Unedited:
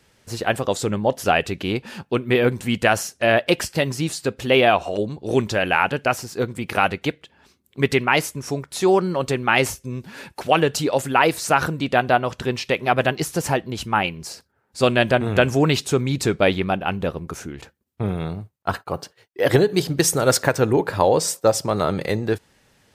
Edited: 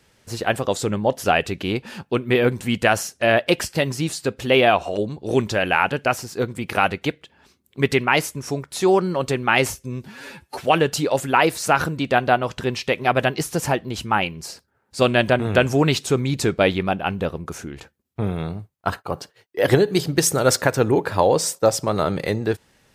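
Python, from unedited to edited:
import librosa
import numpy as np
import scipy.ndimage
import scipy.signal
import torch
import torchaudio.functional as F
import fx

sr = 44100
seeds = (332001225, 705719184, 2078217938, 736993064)

y = fx.edit(x, sr, fx.stretch_span(start_s=10.08, length_s=0.37, factor=1.5), tone=tone)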